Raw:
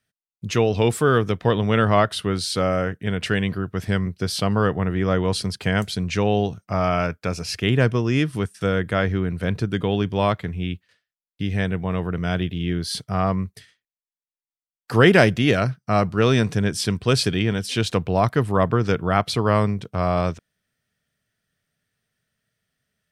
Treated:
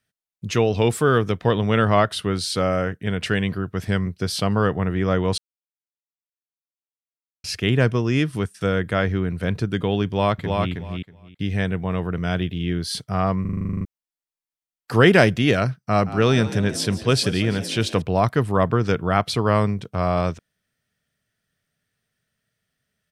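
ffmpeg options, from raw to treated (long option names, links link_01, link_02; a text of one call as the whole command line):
ffmpeg -i in.wav -filter_complex "[0:a]asplit=2[link_01][link_02];[link_02]afade=type=in:start_time=10.06:duration=0.01,afade=type=out:start_time=10.7:duration=0.01,aecho=0:1:320|640|960:0.668344|0.100252|0.0150377[link_03];[link_01][link_03]amix=inputs=2:normalize=0,asettb=1/sr,asplit=3[link_04][link_05][link_06];[link_04]atrim=end=15.804[link_07];[link_05]atrim=start=15.8:end=18.02,asetpts=PTS-STARTPTS,afade=type=in:duration=0.004:curve=qsin,afade=type=out:start_time=2.216:duration=0.004:curve=qsin,asplit=6[link_08][link_09][link_10][link_11][link_12][link_13];[link_09]adelay=171,afreqshift=65,volume=-15dB[link_14];[link_10]adelay=342,afreqshift=130,volume=-20.2dB[link_15];[link_11]adelay=513,afreqshift=195,volume=-25.4dB[link_16];[link_12]adelay=684,afreqshift=260,volume=-30.6dB[link_17];[link_13]adelay=855,afreqshift=325,volume=-35.8dB[link_18];[link_08][link_14][link_15][link_16][link_17][link_18]amix=inputs=6:normalize=0,atrim=end_sample=97902[link_19];[link_06]atrim=start=18.016[link_20];[link_07][link_19]acrossfade=duration=0.004:curve1=hsin:curve2=qsin[link_21];[link_21][link_20]acrossfade=duration=0.004:curve1=qsin:curve2=hsin,asplit=14[link_22][link_23][link_24][link_25][link_26][link_27][link_28][link_29][link_30][link_31][link_32][link_33][link_34][link_35];[link_22]atrim=end=5.38,asetpts=PTS-STARTPTS,afade=type=out:start_time=5.376:duration=0.004:curve=hsin[link_36];[link_23]atrim=start=5.38:end=7.44,asetpts=PTS-STARTPTS,volume=0[link_37];[link_24]atrim=start=7.44:end=13.452,asetpts=PTS-STARTPTS,afade=type=in:duration=0.004:curve=hsin[link_38];[link_25]atrim=start=13.408:end=13.452[link_39];[link_26]atrim=start=13.408:end=13.452[link_40];[link_27]atrim=start=13.408:end=13.452[link_41];[link_28]atrim=start=13.408:end=13.452[link_42];[link_29]atrim=start=13.408:end=13.452[link_43];[link_30]atrim=start=13.408:end=13.452[link_44];[link_31]atrim=start=13.408:end=13.452[link_45];[link_32]atrim=start=13.408:end=13.452[link_46];[link_33]atrim=start=13.408:end=13.452[link_47];[link_34]atrim=start=13.408:end=13.452[link_48];[link_35]atrim=start=13.848[link_49];[link_36][link_37][link_38]concat=n=3:v=0:a=1[link_50];[link_50][link_39]acrossfade=duration=0.004:curve1=hsin:curve2=hsin[link_51];[link_51][link_40]acrossfade=duration=0.004:curve1=hsin:curve2=hsin[link_52];[link_52][link_41]acrossfade=duration=0.004:curve1=hsin:curve2=hsin[link_53];[link_53][link_42]acrossfade=duration=0.004:curve1=hsin:curve2=hsin[link_54];[link_54][link_43]acrossfade=duration=0.004:curve1=hsin:curve2=hsin[link_55];[link_55][link_44]acrossfade=duration=0.004:curve1=hsin:curve2=hsin[link_56];[link_56][link_45]acrossfade=duration=0.004:curve1=hsin:curve2=hsin[link_57];[link_57][link_46]acrossfade=duration=0.004:curve1=hsin:curve2=hsin[link_58];[link_58][link_47]acrossfade=duration=0.004:curve1=hsin:curve2=hsin[link_59];[link_59][link_48]acrossfade=duration=0.004:curve1=hsin:curve2=hsin[link_60];[link_60][link_49]acrossfade=duration=0.004:curve1=hsin:curve2=hsin" out.wav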